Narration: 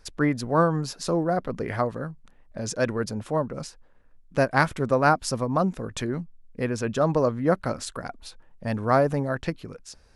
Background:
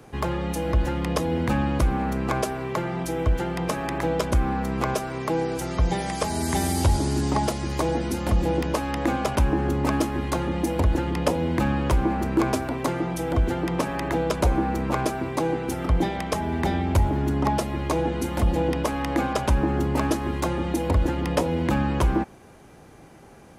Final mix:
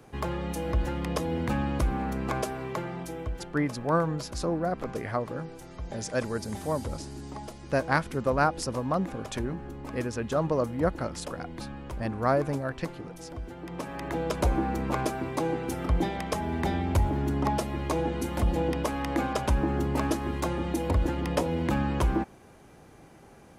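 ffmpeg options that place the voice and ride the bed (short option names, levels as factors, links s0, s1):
-filter_complex "[0:a]adelay=3350,volume=0.596[s0];[1:a]volume=2.37,afade=t=out:st=2.65:d=0.86:silence=0.266073,afade=t=in:st=13.55:d=0.9:silence=0.237137[s1];[s0][s1]amix=inputs=2:normalize=0"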